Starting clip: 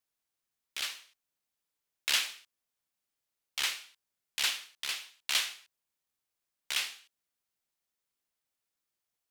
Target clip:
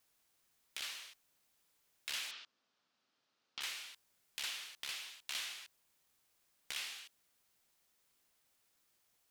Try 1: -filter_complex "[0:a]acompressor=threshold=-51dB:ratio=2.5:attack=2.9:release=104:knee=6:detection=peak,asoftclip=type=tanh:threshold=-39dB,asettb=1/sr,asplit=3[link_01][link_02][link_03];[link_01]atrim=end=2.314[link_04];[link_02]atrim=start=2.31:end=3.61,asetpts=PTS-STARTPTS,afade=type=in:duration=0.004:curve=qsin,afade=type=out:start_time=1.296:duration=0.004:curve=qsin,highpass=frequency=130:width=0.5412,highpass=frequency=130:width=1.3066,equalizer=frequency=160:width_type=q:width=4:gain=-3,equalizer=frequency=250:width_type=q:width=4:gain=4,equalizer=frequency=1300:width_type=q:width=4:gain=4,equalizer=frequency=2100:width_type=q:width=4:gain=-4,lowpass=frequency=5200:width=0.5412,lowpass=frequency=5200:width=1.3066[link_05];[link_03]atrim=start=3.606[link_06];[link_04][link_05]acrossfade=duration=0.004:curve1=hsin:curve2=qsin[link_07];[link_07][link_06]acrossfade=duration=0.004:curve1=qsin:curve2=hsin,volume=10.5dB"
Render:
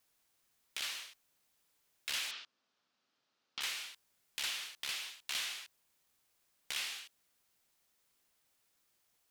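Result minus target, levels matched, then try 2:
downward compressor: peak gain reduction −4.5 dB
-filter_complex "[0:a]acompressor=threshold=-58.5dB:ratio=2.5:attack=2.9:release=104:knee=6:detection=peak,asoftclip=type=tanh:threshold=-39dB,asettb=1/sr,asplit=3[link_01][link_02][link_03];[link_01]atrim=end=2.314[link_04];[link_02]atrim=start=2.31:end=3.61,asetpts=PTS-STARTPTS,afade=type=in:duration=0.004:curve=qsin,afade=type=out:start_time=1.296:duration=0.004:curve=qsin,highpass=frequency=130:width=0.5412,highpass=frequency=130:width=1.3066,equalizer=frequency=160:width_type=q:width=4:gain=-3,equalizer=frequency=250:width_type=q:width=4:gain=4,equalizer=frequency=1300:width_type=q:width=4:gain=4,equalizer=frequency=2100:width_type=q:width=4:gain=-4,lowpass=frequency=5200:width=0.5412,lowpass=frequency=5200:width=1.3066[link_05];[link_03]atrim=start=3.606[link_06];[link_04][link_05]acrossfade=duration=0.004:curve1=hsin:curve2=qsin[link_07];[link_07][link_06]acrossfade=duration=0.004:curve1=qsin:curve2=hsin,volume=10.5dB"

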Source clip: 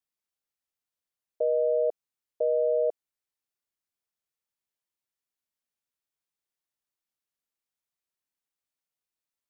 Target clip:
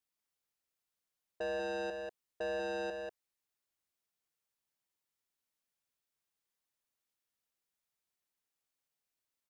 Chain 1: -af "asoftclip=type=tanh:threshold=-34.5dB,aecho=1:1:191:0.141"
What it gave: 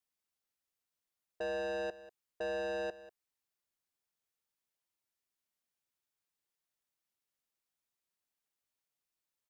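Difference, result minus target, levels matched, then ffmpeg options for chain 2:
echo-to-direct −11.5 dB
-af "asoftclip=type=tanh:threshold=-34.5dB,aecho=1:1:191:0.531"

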